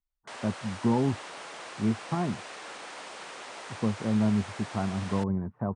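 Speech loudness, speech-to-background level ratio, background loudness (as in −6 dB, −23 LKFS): −30.0 LKFS, 11.5 dB, −41.5 LKFS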